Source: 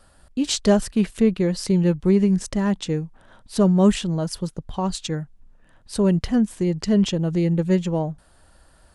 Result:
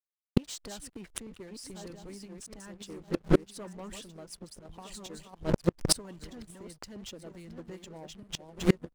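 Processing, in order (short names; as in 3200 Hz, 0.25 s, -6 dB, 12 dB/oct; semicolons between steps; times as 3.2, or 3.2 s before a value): regenerating reverse delay 0.633 s, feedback 47%, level -6 dB; harmonic-percussive split harmonic -15 dB; dynamic EQ 9500 Hz, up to +6 dB, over -48 dBFS, Q 0.8; sample leveller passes 3; backlash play -30.5 dBFS; flipped gate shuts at -17 dBFS, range -34 dB; gain +8.5 dB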